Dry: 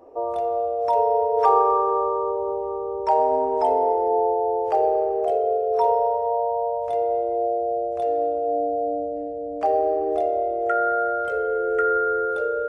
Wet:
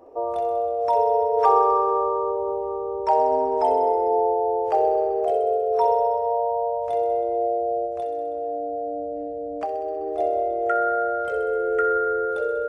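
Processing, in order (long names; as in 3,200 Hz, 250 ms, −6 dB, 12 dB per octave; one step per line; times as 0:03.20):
0:07.85–0:10.19: downward compressor, threshold −25 dBFS, peak gain reduction 8.5 dB
delay with a high-pass on its return 64 ms, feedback 72%, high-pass 3,100 Hz, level −8 dB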